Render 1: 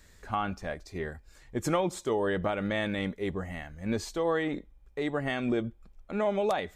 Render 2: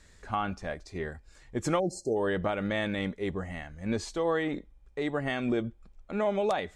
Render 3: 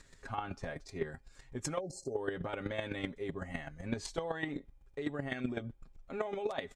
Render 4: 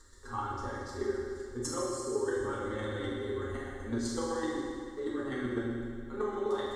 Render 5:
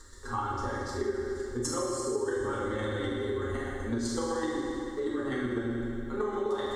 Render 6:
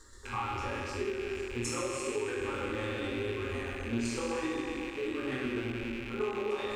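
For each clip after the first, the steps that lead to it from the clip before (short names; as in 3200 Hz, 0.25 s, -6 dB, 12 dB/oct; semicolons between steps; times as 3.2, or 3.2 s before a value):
spectral delete 1.79–2.17, 820–4100 Hz; LPF 10000 Hz 24 dB/oct
comb 7.4 ms, depth 64%; compressor, threshold -30 dBFS, peak gain reduction 9.5 dB; chopper 7.9 Hz, depth 65%, duty 10%; gain +3 dB
fixed phaser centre 660 Hz, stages 6; reverb RT60 2.1 s, pre-delay 4 ms, DRR -6.5 dB
compressor 2.5:1, threshold -36 dBFS, peak gain reduction 6.5 dB; gain +6.5 dB
rattling part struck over -44 dBFS, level -27 dBFS; chorus 0.88 Hz, delay 18.5 ms, depth 7.2 ms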